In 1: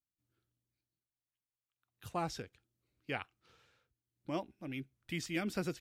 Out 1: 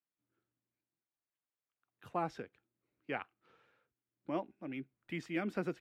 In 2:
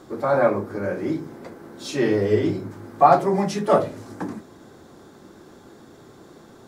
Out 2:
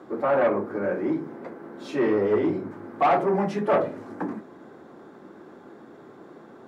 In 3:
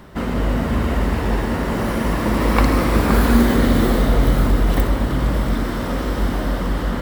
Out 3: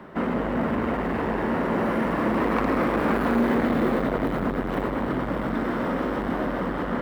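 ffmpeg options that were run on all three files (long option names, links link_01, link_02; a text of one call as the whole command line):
ffmpeg -i in.wav -filter_complex "[0:a]asoftclip=type=tanh:threshold=-17dB,acrossover=split=160 2500:gain=0.141 1 0.141[link_01][link_02][link_03];[link_01][link_02][link_03]amix=inputs=3:normalize=0,volume=1.5dB" out.wav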